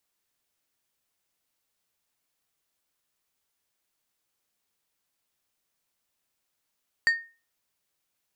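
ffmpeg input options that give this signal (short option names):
-f lavfi -i "aevalsrc='0.178*pow(10,-3*t/0.33)*sin(2*PI*1840*t)+0.0501*pow(10,-3*t/0.174)*sin(2*PI*4600*t)+0.0141*pow(10,-3*t/0.125)*sin(2*PI*7360*t)+0.00398*pow(10,-3*t/0.107)*sin(2*PI*9200*t)+0.00112*pow(10,-3*t/0.089)*sin(2*PI*11960*t)':d=0.89:s=44100"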